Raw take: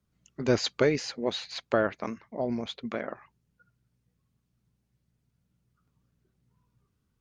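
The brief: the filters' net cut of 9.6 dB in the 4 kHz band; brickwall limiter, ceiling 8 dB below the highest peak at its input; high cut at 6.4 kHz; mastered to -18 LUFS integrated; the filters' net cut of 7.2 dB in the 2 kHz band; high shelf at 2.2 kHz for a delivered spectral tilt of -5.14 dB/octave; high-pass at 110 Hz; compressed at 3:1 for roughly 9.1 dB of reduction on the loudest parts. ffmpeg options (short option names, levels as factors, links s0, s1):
-af "highpass=110,lowpass=6400,equalizer=f=2000:t=o:g=-6.5,highshelf=f=2200:g=-5.5,equalizer=f=4000:t=o:g=-4,acompressor=threshold=0.0282:ratio=3,volume=11.9,alimiter=limit=0.708:level=0:latency=1"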